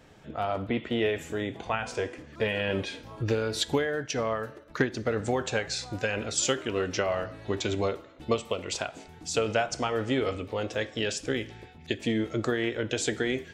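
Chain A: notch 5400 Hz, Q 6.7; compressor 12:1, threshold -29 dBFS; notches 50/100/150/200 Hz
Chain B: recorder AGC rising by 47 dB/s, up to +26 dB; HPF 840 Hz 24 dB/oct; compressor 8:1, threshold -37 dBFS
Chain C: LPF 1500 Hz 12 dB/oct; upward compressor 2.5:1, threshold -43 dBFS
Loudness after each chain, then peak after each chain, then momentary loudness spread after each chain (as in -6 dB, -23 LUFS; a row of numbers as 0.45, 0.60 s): -35.0, -40.5, -31.5 LUFS; -14.5, -20.0, -12.0 dBFS; 5, 4, 7 LU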